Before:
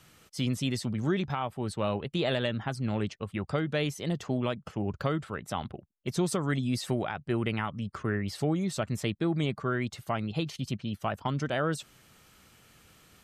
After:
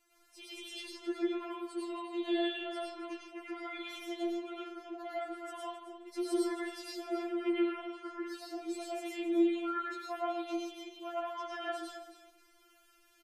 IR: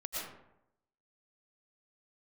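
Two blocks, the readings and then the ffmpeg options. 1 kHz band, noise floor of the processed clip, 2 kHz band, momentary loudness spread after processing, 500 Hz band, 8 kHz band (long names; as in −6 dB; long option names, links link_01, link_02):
−4.5 dB, −66 dBFS, −7.5 dB, 12 LU, −4.5 dB, −9.5 dB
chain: -filter_complex "[0:a]aecho=1:1:268|536|804:0.251|0.0502|0.01[link_01];[1:a]atrim=start_sample=2205,asetrate=48510,aresample=44100[link_02];[link_01][link_02]afir=irnorm=-1:irlink=0,afftfilt=real='re*4*eq(mod(b,16),0)':imag='im*4*eq(mod(b,16),0)':win_size=2048:overlap=0.75,volume=-6dB"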